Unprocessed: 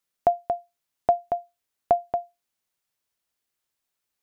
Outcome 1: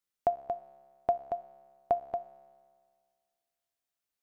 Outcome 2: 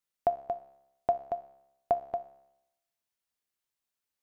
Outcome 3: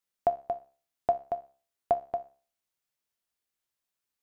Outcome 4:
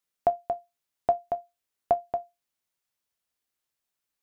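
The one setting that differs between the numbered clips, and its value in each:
tuned comb filter, decay: 1.9, 0.87, 0.4, 0.15 seconds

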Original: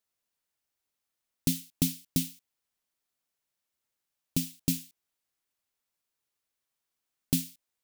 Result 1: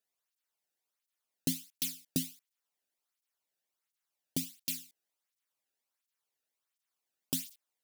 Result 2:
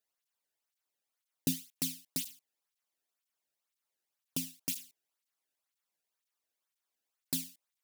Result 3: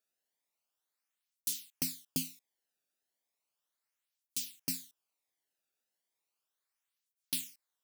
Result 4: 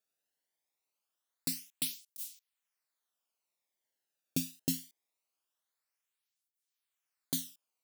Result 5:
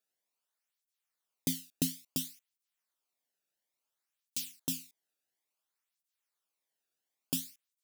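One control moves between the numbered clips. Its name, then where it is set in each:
through-zero flanger with one copy inverted, nulls at: 1.4, 2, 0.35, 0.23, 0.58 Hertz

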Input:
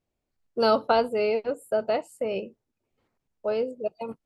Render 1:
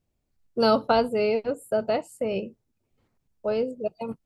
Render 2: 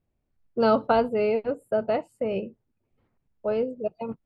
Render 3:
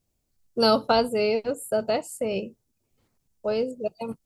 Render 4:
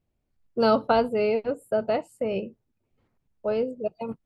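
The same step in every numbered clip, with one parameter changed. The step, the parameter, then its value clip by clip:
bass and treble, treble: +3, −14, +13, −5 decibels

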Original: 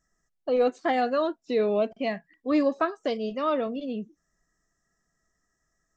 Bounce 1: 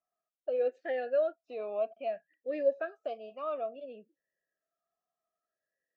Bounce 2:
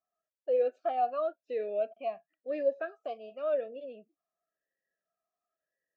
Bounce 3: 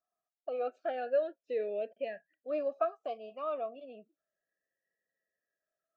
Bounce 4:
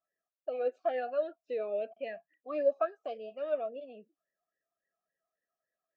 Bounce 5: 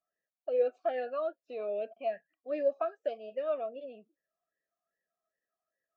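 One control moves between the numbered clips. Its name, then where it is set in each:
formant filter swept between two vowels, speed: 0.59, 0.94, 0.3, 3.6, 2.5 Hertz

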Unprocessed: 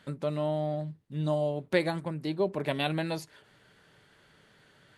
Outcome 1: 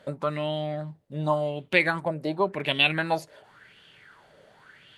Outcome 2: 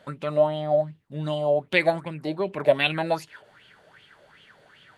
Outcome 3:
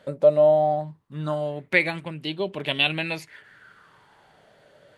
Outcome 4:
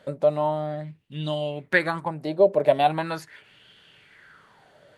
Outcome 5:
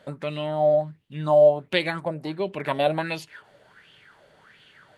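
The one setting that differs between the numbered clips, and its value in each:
auto-filter bell, speed: 0.91, 2.6, 0.2, 0.4, 1.4 Hertz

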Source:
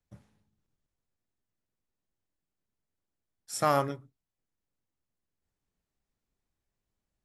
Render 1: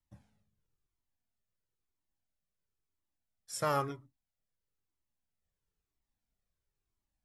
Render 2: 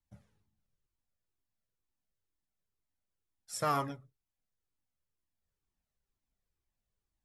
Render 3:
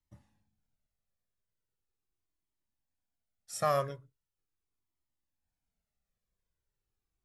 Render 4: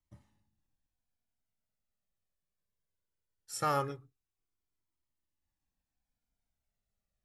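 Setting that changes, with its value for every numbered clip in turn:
flanger whose copies keep moving one way, speed: 1, 2.1, 0.4, 0.2 Hertz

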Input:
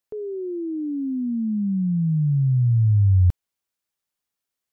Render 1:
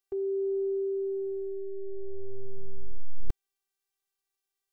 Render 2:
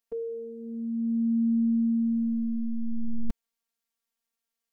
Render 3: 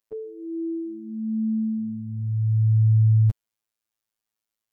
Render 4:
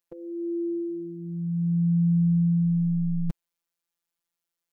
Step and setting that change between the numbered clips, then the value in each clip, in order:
phases set to zero, frequency: 390, 230, 110, 170 Hertz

